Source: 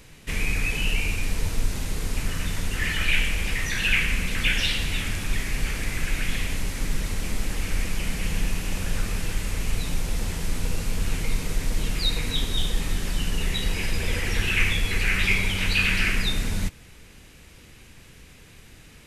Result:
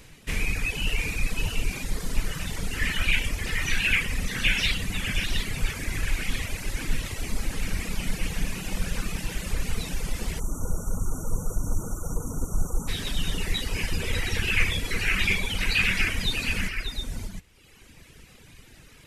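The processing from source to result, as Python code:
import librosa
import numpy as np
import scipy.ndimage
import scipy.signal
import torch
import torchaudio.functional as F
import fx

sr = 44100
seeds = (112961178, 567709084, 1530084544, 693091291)

y = fx.echo_multitap(x, sr, ms=(130, 595, 714), db=(-16.5, -8.0, -7.0))
y = fx.spec_erase(y, sr, start_s=10.4, length_s=2.48, low_hz=1500.0, high_hz=5600.0)
y = fx.dereverb_blind(y, sr, rt60_s=1.3)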